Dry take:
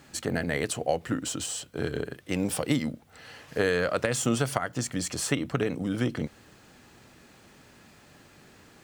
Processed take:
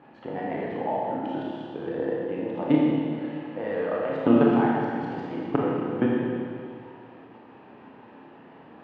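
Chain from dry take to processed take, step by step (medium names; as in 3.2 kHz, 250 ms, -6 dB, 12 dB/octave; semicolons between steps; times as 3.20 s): pitch shift switched off and on +2 st, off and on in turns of 267 ms; tilt EQ -3.5 dB/octave; level held to a coarse grid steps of 17 dB; cabinet simulation 380–2600 Hz, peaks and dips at 410 Hz -3 dB, 600 Hz -4 dB, 900 Hz +5 dB, 1.4 kHz -7 dB, 2.1 kHz -8 dB; Schroeder reverb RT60 2.3 s, combs from 26 ms, DRR -4.5 dB; trim +7 dB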